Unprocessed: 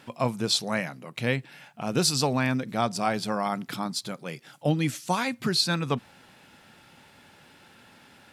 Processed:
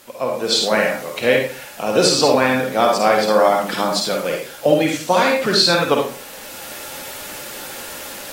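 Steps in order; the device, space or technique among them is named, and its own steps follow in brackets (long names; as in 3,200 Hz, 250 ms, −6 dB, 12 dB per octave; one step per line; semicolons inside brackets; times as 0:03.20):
filmed off a television (band-pass filter 290–7,600 Hz; parametric band 520 Hz +8 dB 0.53 octaves; convolution reverb RT60 0.40 s, pre-delay 45 ms, DRR 1 dB; white noise bed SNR 21 dB; automatic gain control gain up to 14.5 dB; level −1 dB; AAC 48 kbit/s 44,100 Hz)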